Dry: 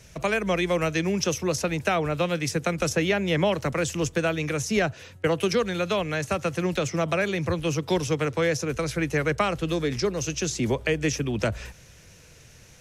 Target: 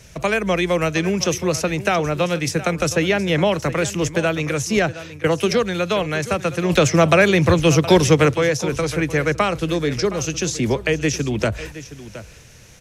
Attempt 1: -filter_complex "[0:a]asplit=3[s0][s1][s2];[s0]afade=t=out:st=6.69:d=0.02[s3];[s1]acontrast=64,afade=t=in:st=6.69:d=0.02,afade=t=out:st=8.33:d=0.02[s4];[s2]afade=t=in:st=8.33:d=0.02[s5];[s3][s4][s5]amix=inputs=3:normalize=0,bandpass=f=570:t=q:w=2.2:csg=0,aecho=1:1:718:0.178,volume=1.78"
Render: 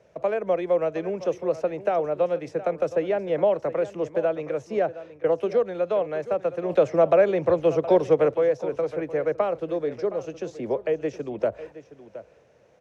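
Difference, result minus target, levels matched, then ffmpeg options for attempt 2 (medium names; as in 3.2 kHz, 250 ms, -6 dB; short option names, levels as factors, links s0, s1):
500 Hz band +3.5 dB
-filter_complex "[0:a]asplit=3[s0][s1][s2];[s0]afade=t=out:st=6.69:d=0.02[s3];[s1]acontrast=64,afade=t=in:st=6.69:d=0.02,afade=t=out:st=8.33:d=0.02[s4];[s2]afade=t=in:st=8.33:d=0.02[s5];[s3][s4][s5]amix=inputs=3:normalize=0,aecho=1:1:718:0.178,volume=1.78"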